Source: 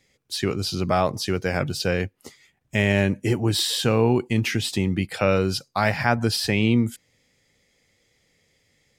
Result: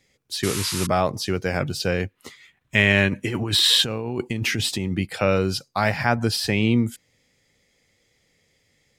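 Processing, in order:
0:00.43–0:00.87: sound drawn into the spectrogram noise 870–12,000 Hz −30 dBFS
0:03.08–0:04.93: compressor whose output falls as the input rises −25 dBFS, ratio −1
0:02.09–0:03.82: gain on a spectral selection 940–4,300 Hz +7 dB

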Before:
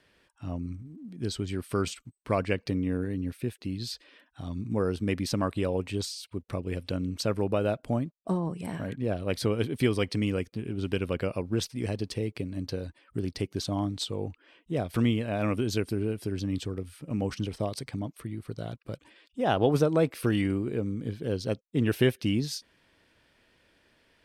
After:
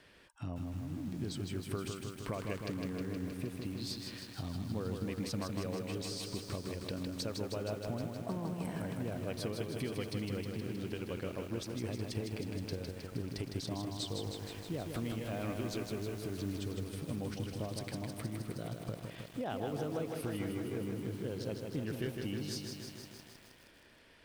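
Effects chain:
downward compressor 5 to 1, threshold −42 dBFS, peak gain reduction 21 dB
0:14.22–0:16.59: background noise pink −62 dBFS
feedback echo at a low word length 157 ms, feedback 80%, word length 10 bits, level −4.5 dB
level +3.5 dB

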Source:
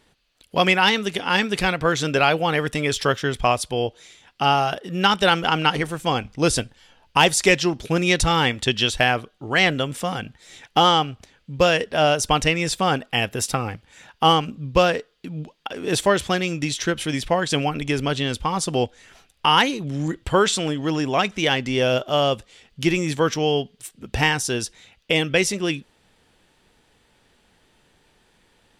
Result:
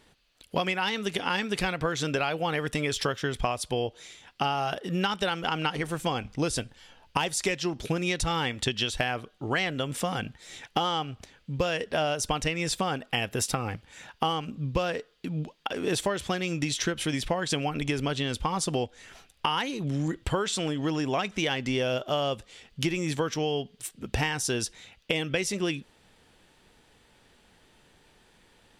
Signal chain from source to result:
downward compressor 10 to 1, threshold −24 dBFS, peak gain reduction 14 dB

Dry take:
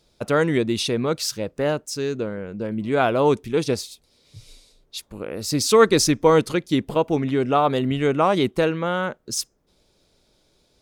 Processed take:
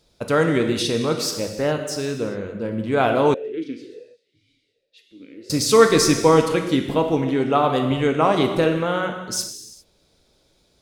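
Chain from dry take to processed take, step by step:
convolution reverb, pre-delay 3 ms, DRR 4 dB
0:03.34–0:05.50: formant filter swept between two vowels e-i 1.3 Hz

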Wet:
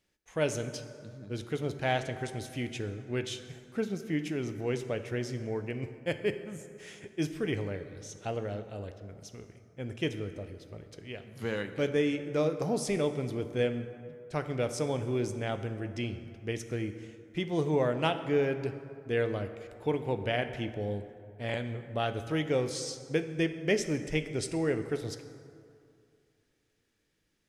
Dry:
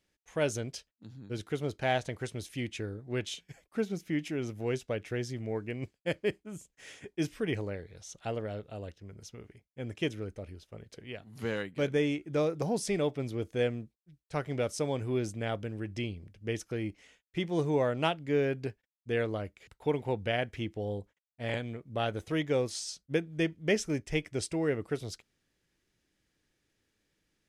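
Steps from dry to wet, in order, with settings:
dense smooth reverb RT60 2.4 s, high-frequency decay 0.5×, DRR 8.5 dB

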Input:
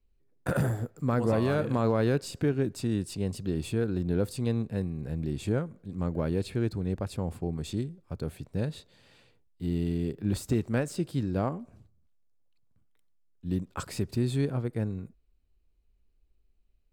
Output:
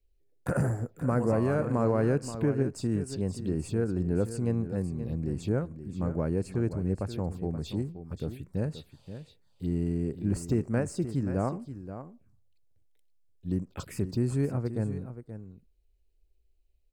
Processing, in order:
phaser swept by the level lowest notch 190 Hz, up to 3,600 Hz, full sweep at −28 dBFS
single-tap delay 528 ms −11.5 dB

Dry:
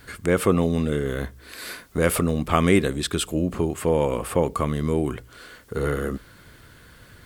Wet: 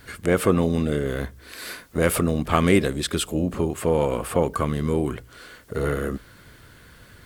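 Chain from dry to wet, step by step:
pitch-shifted copies added +5 semitones −15 dB

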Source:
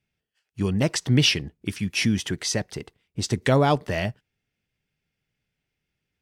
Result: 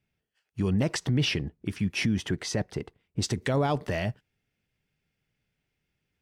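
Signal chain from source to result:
high-shelf EQ 2,500 Hz −6 dB, from 0:01.11 −11.5 dB, from 0:03.22 −3 dB
brickwall limiter −19 dBFS, peak gain reduction 11 dB
level +1.5 dB

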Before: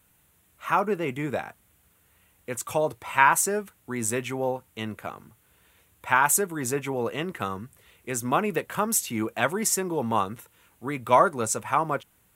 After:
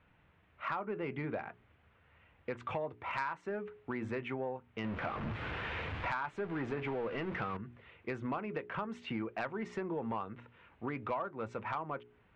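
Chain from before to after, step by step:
0:04.84–0:07.57: converter with a step at zero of −29.5 dBFS
low-pass filter 2,700 Hz 24 dB per octave
mains-hum notches 60/120/180/240/300/360/420 Hz
downward compressor 6 to 1, threshold −35 dBFS, peak gain reduction 20 dB
soft clipping −26 dBFS, distortion −20 dB
level +1 dB

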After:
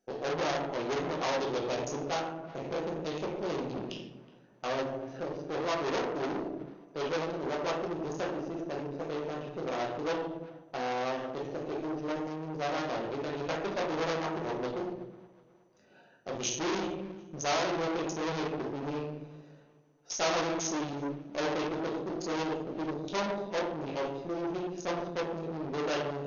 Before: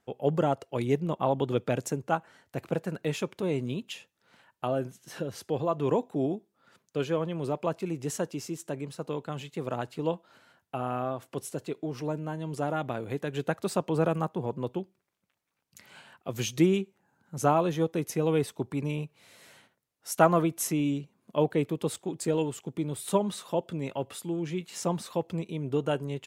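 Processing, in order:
adaptive Wiener filter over 41 samples
high-pass filter 94 Hz 6 dB per octave
leveller curve on the samples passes 1
rectangular room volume 130 cubic metres, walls mixed, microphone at 1 metre
tube saturation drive 29 dB, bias 0.75
brickwall limiter −33.5 dBFS, peak gain reduction 9.5 dB
bass and treble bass −13 dB, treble +10 dB
delay with a low-pass on its return 369 ms, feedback 42%, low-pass 3,400 Hz, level −21 dB
0:01.40–0:03.77: dynamic equaliser 1,700 Hz, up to −4 dB, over −55 dBFS, Q 1.1
level +8 dB
MP2 64 kbit/s 24,000 Hz

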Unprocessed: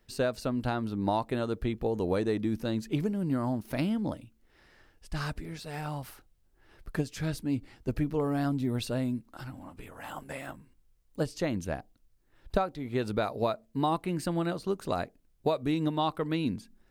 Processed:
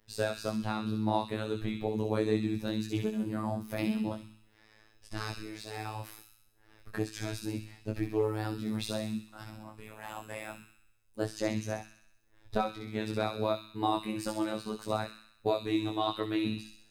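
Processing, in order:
chorus effect 2.1 Hz, delay 18.5 ms, depth 3.4 ms
hum removal 57.24 Hz, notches 6
phases set to zero 108 Hz
on a send: delay with a high-pass on its return 64 ms, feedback 59%, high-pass 2,500 Hz, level −3 dB
on the sum: level +3.5 dB

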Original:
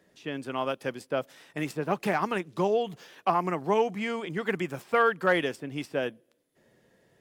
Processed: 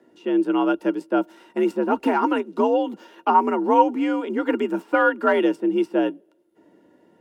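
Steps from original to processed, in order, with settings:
tilt shelving filter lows +5 dB, about 1,200 Hz
frequency shifter +62 Hz
hollow resonant body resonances 330/930/1,400/2,800 Hz, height 15 dB, ringing for 60 ms

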